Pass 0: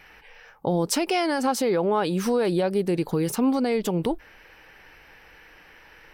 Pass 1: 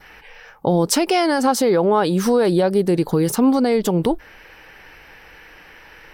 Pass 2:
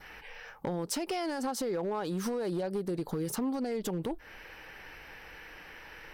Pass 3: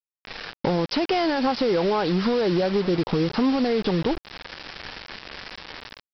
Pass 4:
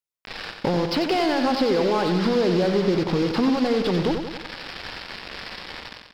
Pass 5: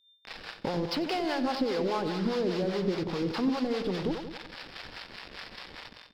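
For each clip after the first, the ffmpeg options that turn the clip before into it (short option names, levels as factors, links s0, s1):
-af "adynamicequalizer=threshold=0.00251:dfrequency=2500:dqfactor=2.8:tfrequency=2500:tqfactor=2.8:attack=5:release=100:ratio=0.375:range=3:mode=cutabove:tftype=bell,volume=2.11"
-af "acompressor=threshold=0.0631:ratio=20,asoftclip=type=hard:threshold=0.075,volume=0.596"
-af "dynaudnorm=f=110:g=5:m=2.24,aresample=11025,acrusher=bits=5:mix=0:aa=0.000001,aresample=44100,volume=1.58"
-filter_complex "[0:a]asplit=2[s0][s1];[s1]aeval=exprs='0.0398*(abs(mod(val(0)/0.0398+3,4)-2)-1)':c=same,volume=0.316[s2];[s0][s2]amix=inputs=2:normalize=0,aecho=1:1:91|182|273|364|455|546|637:0.447|0.246|0.135|0.0743|0.0409|0.0225|0.0124"
-filter_complex "[0:a]aeval=exprs='val(0)+0.00224*sin(2*PI*3600*n/s)':c=same,acrossover=split=500[s0][s1];[s0]aeval=exprs='val(0)*(1-0.7/2+0.7/2*cos(2*PI*4.9*n/s))':c=same[s2];[s1]aeval=exprs='val(0)*(1-0.7/2-0.7/2*cos(2*PI*4.9*n/s))':c=same[s3];[s2][s3]amix=inputs=2:normalize=0,volume=0.562"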